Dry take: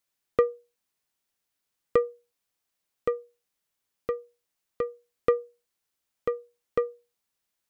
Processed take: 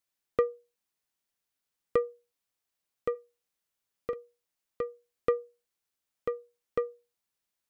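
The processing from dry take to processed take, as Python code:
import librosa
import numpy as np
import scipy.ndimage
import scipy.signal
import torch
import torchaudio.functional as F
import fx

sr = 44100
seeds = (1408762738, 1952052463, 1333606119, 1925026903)

y = fx.doubler(x, sr, ms=43.0, db=-9, at=(3.14, 4.14), fade=0.02)
y = F.gain(torch.from_numpy(y), -4.0).numpy()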